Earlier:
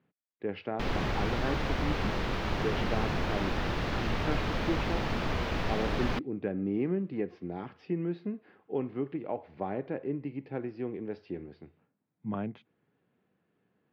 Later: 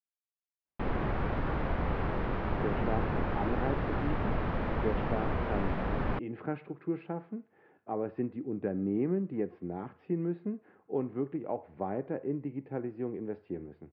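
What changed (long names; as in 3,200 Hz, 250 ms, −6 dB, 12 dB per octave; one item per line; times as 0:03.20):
speech: entry +2.20 s
master: add low-pass filter 1,600 Hz 12 dB per octave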